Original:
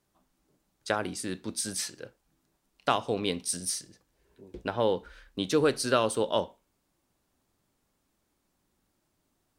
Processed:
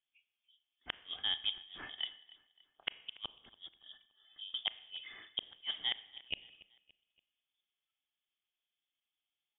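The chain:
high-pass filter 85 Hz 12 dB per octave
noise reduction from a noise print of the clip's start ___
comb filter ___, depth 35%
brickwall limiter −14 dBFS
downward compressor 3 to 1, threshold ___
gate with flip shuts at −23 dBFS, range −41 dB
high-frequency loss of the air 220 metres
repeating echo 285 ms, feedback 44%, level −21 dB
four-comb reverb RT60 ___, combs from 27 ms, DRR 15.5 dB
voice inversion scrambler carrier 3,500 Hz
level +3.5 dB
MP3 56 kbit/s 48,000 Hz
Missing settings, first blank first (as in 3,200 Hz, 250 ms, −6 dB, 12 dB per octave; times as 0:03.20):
18 dB, 2.2 ms, −32 dBFS, 0.84 s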